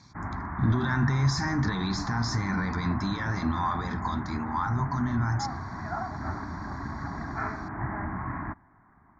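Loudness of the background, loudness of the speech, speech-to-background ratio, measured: -35.5 LUFS, -29.0 LUFS, 6.5 dB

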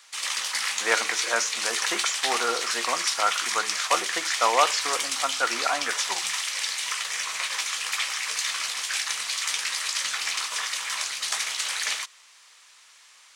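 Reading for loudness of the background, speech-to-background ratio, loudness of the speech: -26.5 LUFS, -1.0 dB, -27.5 LUFS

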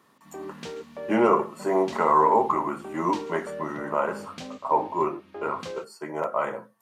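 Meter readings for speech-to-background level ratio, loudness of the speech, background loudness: 14.5 dB, -25.5 LUFS, -40.0 LUFS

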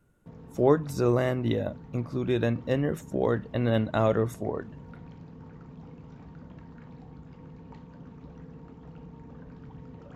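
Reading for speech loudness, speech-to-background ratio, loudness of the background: -27.5 LUFS, 19.5 dB, -47.0 LUFS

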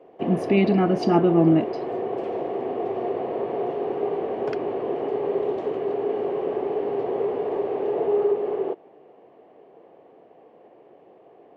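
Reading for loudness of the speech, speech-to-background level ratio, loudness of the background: -20.5 LUFS, 6.5 dB, -27.0 LUFS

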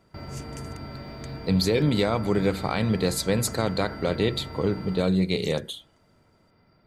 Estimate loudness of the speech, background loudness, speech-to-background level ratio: -25.5 LUFS, -38.0 LUFS, 12.5 dB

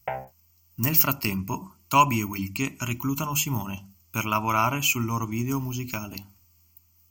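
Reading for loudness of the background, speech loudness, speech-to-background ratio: -36.0 LUFS, -25.0 LUFS, 11.0 dB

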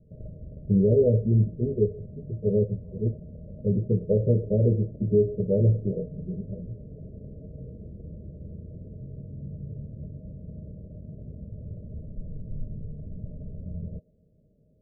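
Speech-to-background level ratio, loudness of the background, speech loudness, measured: 17.0 dB, -42.0 LUFS, -25.0 LUFS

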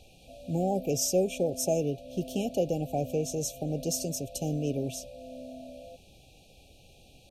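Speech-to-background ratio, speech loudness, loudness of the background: 15.0 dB, -30.5 LUFS, -45.5 LUFS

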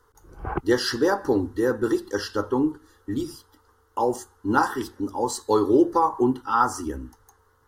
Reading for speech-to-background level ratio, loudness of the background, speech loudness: 9.5 dB, -33.5 LUFS, -24.0 LUFS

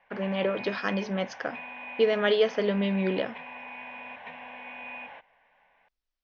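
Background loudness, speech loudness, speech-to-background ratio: -41.0 LUFS, -28.0 LUFS, 13.0 dB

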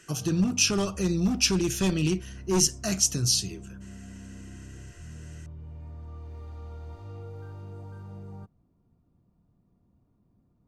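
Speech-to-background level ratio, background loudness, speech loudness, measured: 19.0 dB, -44.0 LUFS, -25.0 LUFS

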